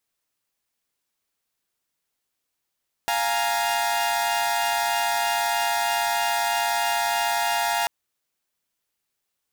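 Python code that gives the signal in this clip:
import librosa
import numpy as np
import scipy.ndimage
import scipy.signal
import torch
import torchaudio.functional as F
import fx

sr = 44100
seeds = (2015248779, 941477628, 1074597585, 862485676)

y = fx.chord(sr, length_s=4.79, notes=(77, 80, 82), wave='saw', level_db=-23.5)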